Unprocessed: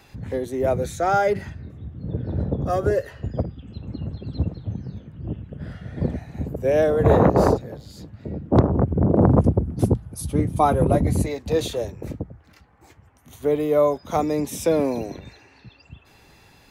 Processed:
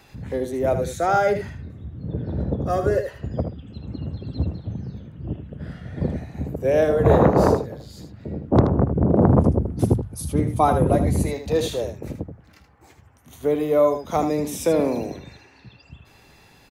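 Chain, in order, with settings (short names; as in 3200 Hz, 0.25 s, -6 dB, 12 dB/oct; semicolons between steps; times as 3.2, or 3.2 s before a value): notches 50/100 Hz; echo 78 ms -8.5 dB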